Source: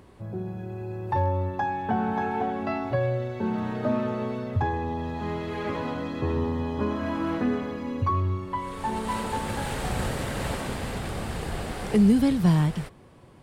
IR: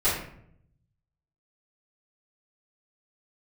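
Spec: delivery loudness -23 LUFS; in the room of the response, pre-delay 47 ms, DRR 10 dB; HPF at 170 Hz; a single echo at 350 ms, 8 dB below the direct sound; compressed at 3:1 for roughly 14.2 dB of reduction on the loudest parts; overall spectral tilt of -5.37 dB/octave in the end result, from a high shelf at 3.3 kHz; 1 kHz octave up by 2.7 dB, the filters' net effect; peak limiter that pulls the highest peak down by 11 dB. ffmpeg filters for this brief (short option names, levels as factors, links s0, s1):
-filter_complex "[0:a]highpass=170,equalizer=f=1000:t=o:g=3,highshelf=f=3300:g=3,acompressor=threshold=0.0141:ratio=3,alimiter=level_in=2.82:limit=0.0631:level=0:latency=1,volume=0.355,aecho=1:1:350:0.398,asplit=2[s0][s1];[1:a]atrim=start_sample=2205,adelay=47[s2];[s1][s2]afir=irnorm=-1:irlink=0,volume=0.0668[s3];[s0][s3]amix=inputs=2:normalize=0,volume=7.08"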